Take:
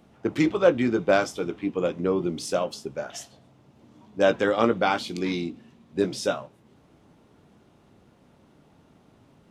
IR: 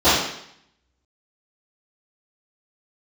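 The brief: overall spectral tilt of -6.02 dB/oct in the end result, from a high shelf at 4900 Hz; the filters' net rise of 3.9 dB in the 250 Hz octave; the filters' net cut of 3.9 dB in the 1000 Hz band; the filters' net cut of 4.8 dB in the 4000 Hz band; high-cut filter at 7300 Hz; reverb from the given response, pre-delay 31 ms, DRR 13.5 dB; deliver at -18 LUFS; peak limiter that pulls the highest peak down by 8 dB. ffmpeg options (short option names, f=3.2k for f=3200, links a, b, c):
-filter_complex "[0:a]lowpass=7.3k,equalizer=f=250:t=o:g=5.5,equalizer=f=1k:t=o:g=-6,equalizer=f=4k:t=o:g=-4,highshelf=f=4.9k:g=-3,alimiter=limit=-14.5dB:level=0:latency=1,asplit=2[a][b];[1:a]atrim=start_sample=2205,adelay=31[c];[b][c]afir=irnorm=-1:irlink=0,volume=-38.5dB[d];[a][d]amix=inputs=2:normalize=0,volume=8.5dB"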